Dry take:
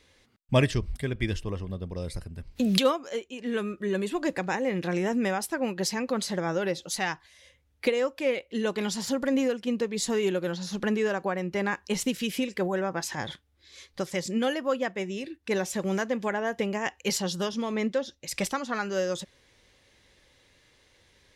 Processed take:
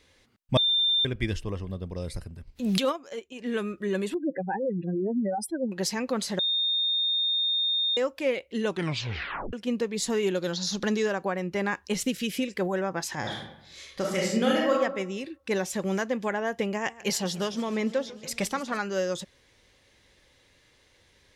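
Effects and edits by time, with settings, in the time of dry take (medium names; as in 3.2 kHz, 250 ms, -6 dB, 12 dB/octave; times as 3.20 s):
0.57–1.05 s: bleep 3.59 kHz -20.5 dBFS
2.30–3.40 s: transient shaper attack -10 dB, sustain -6 dB
4.14–5.72 s: spectral contrast enhancement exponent 3.6
6.39–7.97 s: bleep 3.66 kHz -23 dBFS
8.67 s: tape stop 0.86 s
10.35–11.06 s: high-order bell 4.9 kHz +9.5 dB 1.2 oct
11.93–12.50 s: peaking EQ 930 Hz -10.5 dB 0.36 oct
13.20–14.72 s: reverb throw, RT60 0.83 s, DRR -2.5 dB
16.72–18.81 s: modulated delay 148 ms, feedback 72%, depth 155 cents, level -19 dB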